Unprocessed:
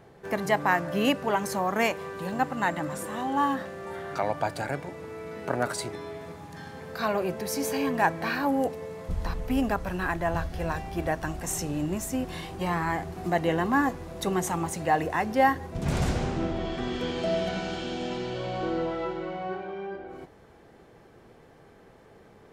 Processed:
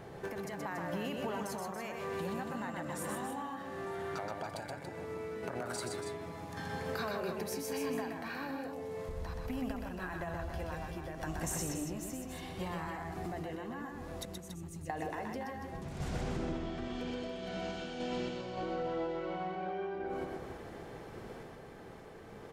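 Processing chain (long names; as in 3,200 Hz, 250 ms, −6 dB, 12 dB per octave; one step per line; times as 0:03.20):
0:14.25–0:14.90: guitar amp tone stack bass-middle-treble 10-0-1
brickwall limiter −20.5 dBFS, peak gain reduction 11 dB
downward compressor 10 to 1, threshold −41 dBFS, peak gain reduction 16 dB
sample-and-hold tremolo
on a send: loudspeakers that aren't time-aligned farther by 43 metres −4 dB, 97 metres −8 dB
on the sum: level +6 dB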